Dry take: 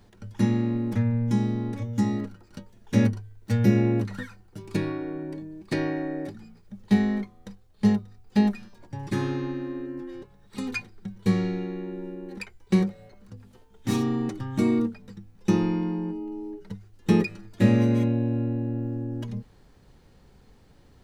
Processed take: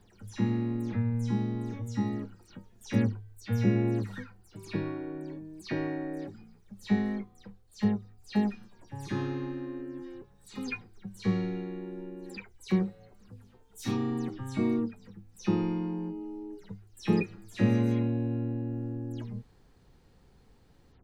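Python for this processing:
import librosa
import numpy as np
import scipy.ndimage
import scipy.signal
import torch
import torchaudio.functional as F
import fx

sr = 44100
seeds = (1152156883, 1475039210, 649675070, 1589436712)

y = fx.spec_delay(x, sr, highs='early', ms=117)
y = y * librosa.db_to_amplitude(-5.0)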